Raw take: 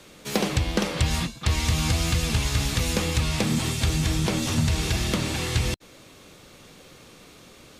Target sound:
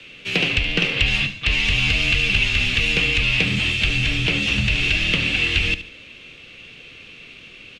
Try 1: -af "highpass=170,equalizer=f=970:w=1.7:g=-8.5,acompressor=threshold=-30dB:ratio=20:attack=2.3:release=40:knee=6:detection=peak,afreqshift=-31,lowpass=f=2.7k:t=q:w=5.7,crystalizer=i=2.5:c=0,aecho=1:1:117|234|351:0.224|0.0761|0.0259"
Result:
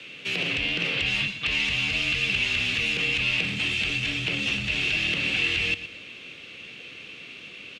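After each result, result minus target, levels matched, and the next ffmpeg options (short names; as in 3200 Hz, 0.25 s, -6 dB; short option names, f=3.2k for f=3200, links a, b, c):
compressor: peak gain reduction +14 dB; echo 44 ms late; 125 Hz band -5.5 dB
-af "highpass=170,equalizer=f=970:w=1.7:g=-8.5,afreqshift=-31,lowpass=f=2.7k:t=q:w=5.7,crystalizer=i=2.5:c=0,aecho=1:1:117|234|351:0.224|0.0761|0.0259"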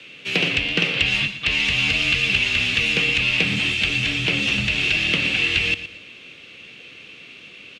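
echo 44 ms late; 125 Hz band -4.5 dB
-af "highpass=170,equalizer=f=970:w=1.7:g=-8.5,afreqshift=-31,lowpass=f=2.7k:t=q:w=5.7,crystalizer=i=2.5:c=0,aecho=1:1:73|146|219:0.224|0.0761|0.0259"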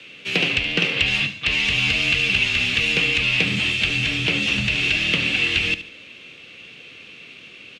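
125 Hz band -4.5 dB
-af "equalizer=f=970:w=1.7:g=-8.5,afreqshift=-31,lowpass=f=2.7k:t=q:w=5.7,crystalizer=i=2.5:c=0,aecho=1:1:73|146|219:0.224|0.0761|0.0259"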